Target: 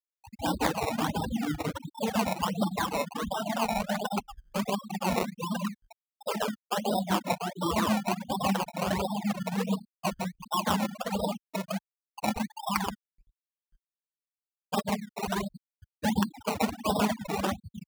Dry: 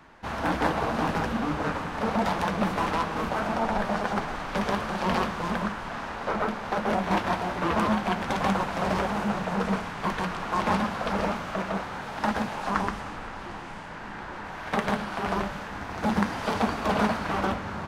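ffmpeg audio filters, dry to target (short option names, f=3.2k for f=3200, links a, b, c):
-filter_complex "[0:a]afftfilt=real='re*gte(hypot(re,im),0.141)':imag='im*gte(hypot(re,im),0.141)':win_size=1024:overlap=0.75,highpass=42,asplit=2[a][b];[b]acompressor=threshold=-40dB:ratio=12,volume=0dB[c];[a][c]amix=inputs=2:normalize=0,acrusher=samples=19:mix=1:aa=0.000001:lfo=1:lforange=19:lforate=1.4,adynamicequalizer=threshold=0.00794:dfrequency=3600:dqfactor=0.7:tfrequency=3600:tqfactor=0.7:attack=5:release=100:ratio=0.375:range=1.5:mode=cutabove:tftype=highshelf,volume=-2dB"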